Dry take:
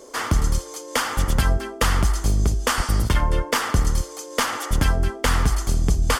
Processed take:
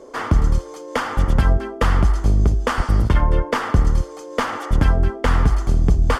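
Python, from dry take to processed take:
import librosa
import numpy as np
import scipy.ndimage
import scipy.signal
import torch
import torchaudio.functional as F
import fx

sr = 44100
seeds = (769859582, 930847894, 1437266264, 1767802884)

y = fx.lowpass(x, sr, hz=1200.0, slope=6)
y = y * librosa.db_to_amplitude(4.0)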